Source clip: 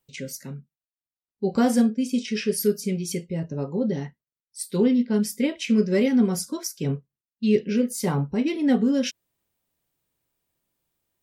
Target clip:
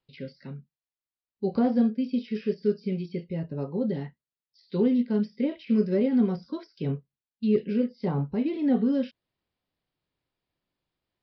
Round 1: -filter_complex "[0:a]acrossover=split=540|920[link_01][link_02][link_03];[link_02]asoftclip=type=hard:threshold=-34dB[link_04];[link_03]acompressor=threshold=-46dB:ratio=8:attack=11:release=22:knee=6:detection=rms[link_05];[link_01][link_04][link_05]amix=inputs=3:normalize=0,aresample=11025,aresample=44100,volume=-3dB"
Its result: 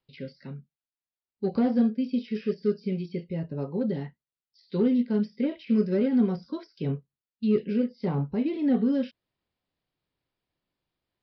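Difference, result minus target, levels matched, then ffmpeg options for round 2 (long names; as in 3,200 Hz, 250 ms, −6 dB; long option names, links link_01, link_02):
hard clipping: distortion +16 dB
-filter_complex "[0:a]acrossover=split=540|920[link_01][link_02][link_03];[link_02]asoftclip=type=hard:threshold=-26dB[link_04];[link_03]acompressor=threshold=-46dB:ratio=8:attack=11:release=22:knee=6:detection=rms[link_05];[link_01][link_04][link_05]amix=inputs=3:normalize=0,aresample=11025,aresample=44100,volume=-3dB"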